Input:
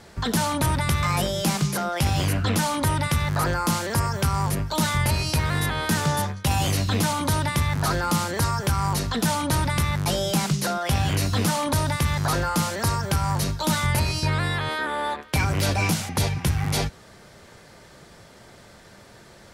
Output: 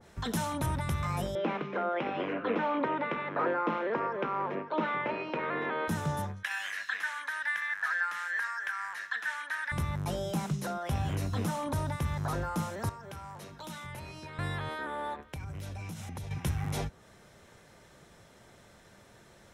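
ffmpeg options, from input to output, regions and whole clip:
-filter_complex "[0:a]asettb=1/sr,asplit=3[a][b][c];[a]atrim=end=1.354[d];[b]atrim=start=1.35:end=5.88,asetpts=PTS-STARTPTS,afade=t=in:d=0.004:c=qsin,afade=t=out:st=4.526:d=0.004:c=qsin,highpass=f=260:w=0.5412,highpass=f=260:w=1.3066,equalizer=f=470:t=q:w=4:g=5,equalizer=f=790:t=q:w=4:g=-4,equalizer=f=2.4k:t=q:w=4:g=3,lowpass=f=2.8k:w=0.5412,lowpass=f=2.8k:w=1.3066,aecho=1:1:563:0.168,atrim=end_sample=199773,acontrast=53[e];[c]atrim=start=5.876[f];[d][e]acrossfade=d=0.004:c1=hsin:c2=qsin[g];[g][f]acrossfade=d=0.004:c1=qsin:c2=hsin,asettb=1/sr,asplit=3[h][i][j];[h]atrim=end=6.434[k];[i]atrim=start=6.43:end=9.72,asetpts=PTS-STARTPTS,afade=t=in:d=0.004:c=qsin,afade=t=out:st=3.286:d=0.004:c=qsin,acrossover=split=4000[l][m];[m]acompressor=threshold=-33dB:ratio=4:attack=1:release=60[n];[l][n]amix=inputs=2:normalize=0,highpass=f=1.7k:t=q:w=11,highshelf=f=12k:g=-8.5[o];[j]atrim=start=9.716[p];[k][o]acrossfade=d=0.004:c1=hsin:c2=qsin[q];[q][p]acrossfade=d=0.004:c1=qsin:c2=hsin,asettb=1/sr,asplit=3[r][s][t];[r]atrim=end=12.894[u];[s]atrim=start=12.89:end=14.39,asetpts=PTS-STARTPTS,afade=t=in:d=0.004:c=qsin,afade=t=out:st=1.496:d=0.004:c=qsin,acrossover=split=170 3000:gain=0.158 1 0.251[v][w][x];[v][w][x]amix=inputs=3:normalize=0,acrossover=split=120|3000[y][z][aa];[z]acompressor=threshold=-36dB:ratio=3:attack=3.2:release=140:knee=2.83:detection=peak[ab];[y][ab][aa]amix=inputs=3:normalize=0,bandreject=f=50:t=h:w=6,bandreject=f=100:t=h:w=6,bandreject=f=150:t=h:w=6,bandreject=f=200:t=h:w=6,bandreject=f=250:t=h:w=6,bandreject=f=300:t=h:w=6,bandreject=f=350:t=h:w=6[ac];[t]atrim=start=14.386[ad];[u][ac]acrossfade=d=0.004:c1=hsin:c2=qsin[ae];[ae][ad]acrossfade=d=0.004:c1=qsin:c2=hsin,asettb=1/sr,asplit=3[af][ag][ah];[af]atrim=end=15.194[ai];[ag]atrim=start=15.19:end=16.31,asetpts=PTS-STARTPTS,afade=t=in:d=0.004:c=qsin,afade=t=out:st=1.116:d=0.004:c=qsin,lowshelf=f=150:g=9.5,acompressor=threshold=-28dB:ratio=10:attack=3.2:release=140:knee=1:detection=peak[aj];[ah]atrim=start=16.306[ak];[ai][aj]acrossfade=d=0.004:c1=hsin:c2=qsin[al];[al][ak]acrossfade=d=0.004:c1=qsin:c2=hsin,bandreject=f=4.6k:w=6.7,adynamicequalizer=threshold=0.00794:dfrequency=1700:dqfactor=0.7:tfrequency=1700:tqfactor=0.7:attack=5:release=100:ratio=0.375:range=4:mode=cutabove:tftype=highshelf,volume=-8.5dB"

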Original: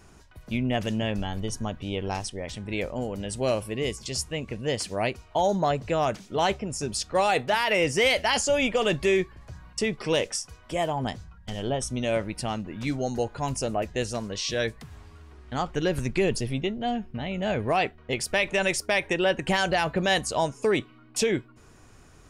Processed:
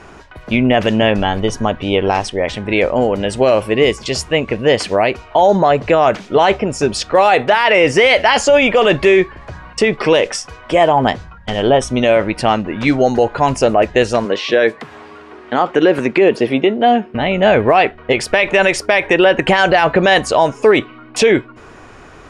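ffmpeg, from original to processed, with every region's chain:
-filter_complex "[0:a]asettb=1/sr,asplit=3[a][b][c];[a]atrim=end=14.254[d];[b]atrim=start=14.25:end=17.15,asetpts=PTS-STARTPTS,afade=t=in:d=0.004:c=qsin,afade=t=out:st=2.896:d=0.004:c=qsin,acrossover=split=3400[e][f];[f]acompressor=threshold=-45dB:ratio=4:attack=1:release=60[g];[e][g]amix=inputs=2:normalize=0,highpass=210,equalizer=f=340:t=o:w=1.5:g=3[h];[c]atrim=start=17.146[i];[d][h]acrossfade=d=0.004:c1=hsin:c2=qsin[j];[j][i]acrossfade=d=0.004:c1=qsin:c2=hsin,lowpass=9.9k,bass=f=250:g=-10,treble=f=4k:g=-14,alimiter=level_in=20.5dB:limit=-1dB:release=50:level=0:latency=1,volume=-1.5dB"

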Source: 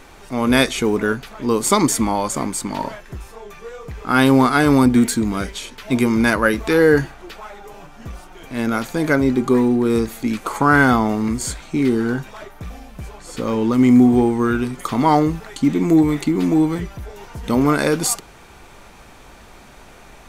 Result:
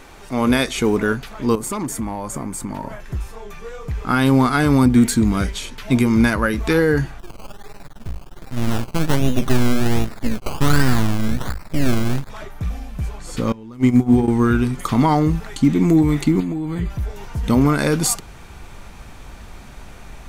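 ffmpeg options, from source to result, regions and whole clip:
-filter_complex "[0:a]asettb=1/sr,asplit=3[a][b][c];[a]atrim=end=1.554[d];[b]atrim=start=1.55:end=3,asetpts=PTS-STARTPTS,afade=t=in:d=0.004:c=qsin,afade=t=out:st=1.446:d=0.004:c=qsin,equalizer=f=4.1k:t=o:w=1.5:g=-10,asoftclip=type=hard:threshold=-11.5dB,acompressor=threshold=-26dB:ratio=3:attack=3.2:release=140:knee=1:detection=peak[e];[c]atrim=start=2.996[f];[d][e]acrossfade=d=0.004:c1=hsin:c2=qsin[g];[g][f]acrossfade=d=0.004:c1=qsin:c2=hsin,asettb=1/sr,asplit=3[h][i][j];[h]atrim=end=7.194[k];[i]atrim=start=7.19:end=12.3,asetpts=PTS-STARTPTS,afade=t=in:d=0.004:c=qsin,afade=t=out:st=5.106:d=0.004:c=qsin,acrusher=samples=19:mix=1:aa=0.000001:lfo=1:lforange=11.4:lforate=1.3,aeval=exprs='max(val(0),0)':c=same[l];[j]atrim=start=12.296[m];[k][l]acrossfade=d=0.004:c1=hsin:c2=qsin[n];[n][m]acrossfade=d=0.004:c1=qsin:c2=hsin,asettb=1/sr,asplit=3[o][p][q];[o]atrim=end=13.524[r];[p]atrim=start=13.52:end=14.28,asetpts=PTS-STARTPTS,afade=t=in:d=0.004:c=qsin,afade=t=out:st=0.756:d=0.004:c=qsin,bandreject=f=50:t=h:w=6,bandreject=f=100:t=h:w=6,bandreject=f=150:t=h:w=6,bandreject=f=200:t=h:w=6,bandreject=f=250:t=h:w=6,bandreject=f=300:t=h:w=6,bandreject=f=350:t=h:w=6,bandreject=f=400:t=h:w=6,bandreject=f=450:t=h:w=6,bandreject=f=500:t=h:w=6,agate=range=-21dB:threshold=-15dB:ratio=16:release=100:detection=peak[s];[q]atrim=start=14.276[t];[r][s]acrossfade=d=0.004:c1=hsin:c2=qsin[u];[u][t]acrossfade=d=0.004:c1=qsin:c2=hsin,asettb=1/sr,asplit=3[v][w][x];[v]atrim=end=16.404[y];[w]atrim=start=16.4:end=16.9,asetpts=PTS-STARTPTS,afade=t=in:d=0.004:c=qsin,afade=t=out:st=0.496:d=0.004:c=qsin,highshelf=f=8.1k:g=-4.5,acompressor=threshold=-23dB:ratio=10:attack=3.2:release=140:knee=1:detection=peak,asuperstop=centerf=5500:order=12:qfactor=4.4[z];[x]atrim=start=16.896[aa];[y][z]acrossfade=d=0.004:c1=hsin:c2=qsin[ab];[ab][aa]acrossfade=d=0.004:c1=qsin:c2=hsin,alimiter=limit=-8dB:level=0:latency=1:release=234,asubboost=boost=2:cutoff=230,volume=1dB"

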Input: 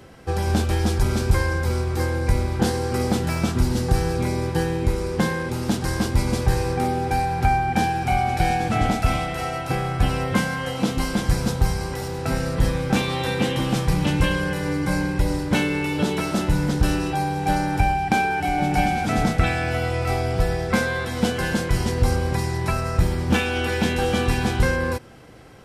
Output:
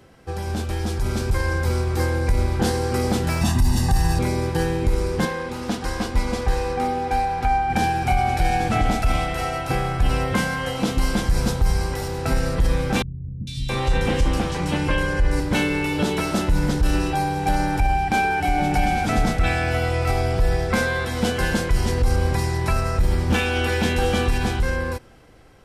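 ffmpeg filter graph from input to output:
-filter_complex "[0:a]asettb=1/sr,asplit=3[a][b][c];[a]atrim=end=3.414[d];[b]atrim=start=3.41:end=4.19,asetpts=PTS-STARTPTS,afade=t=in:d=0.004:c=qsin,afade=t=out:st=0.776:d=0.004:c=qsin,highshelf=f=6.1k:g=6,aecho=1:1:1.1:0.82,atrim=end_sample=34398[e];[c]atrim=start=4.186[f];[d][e]acrossfade=d=0.004:c1=hsin:c2=qsin[g];[g][f]acrossfade=d=0.004:c1=qsin:c2=hsin,asettb=1/sr,asplit=3[h][i][j];[h]atrim=end=5.254[k];[i]atrim=start=5.25:end=7.7,asetpts=PTS-STARTPTS,afade=t=in:d=0.004:c=qsin,afade=t=out:st=2.446:d=0.004:c=qsin,lowpass=f=3.9k:p=1,lowshelf=f=320:g=-8,aecho=1:1:4.1:0.37,atrim=end_sample=108045[l];[j]atrim=start=7.696[m];[k][l]acrossfade=d=0.004:c1=hsin:c2=qsin[n];[n][m]acrossfade=d=0.004:c1=qsin:c2=hsin,asettb=1/sr,asplit=3[o][p][q];[o]atrim=end=13.024[r];[p]atrim=start=13.02:end=15.4,asetpts=PTS-STARTPTS,afade=t=in:d=0.004:c=qsin,afade=t=out:st=2.376:d=0.004:c=qsin,lowpass=9.3k,acrossover=split=160|3600[s][t][u];[u]adelay=450[v];[t]adelay=670[w];[s][w][v]amix=inputs=3:normalize=0,atrim=end_sample=104958[x];[q]atrim=start=15.396[y];[r][x]acrossfade=d=0.004:c1=hsin:c2=qsin[z];[z][y]acrossfade=d=0.004:c1=qsin:c2=hsin,asubboost=boost=3:cutoff=64,alimiter=limit=-12dB:level=0:latency=1:release=41,dynaudnorm=f=270:g=9:m=7dB,volume=-5dB"

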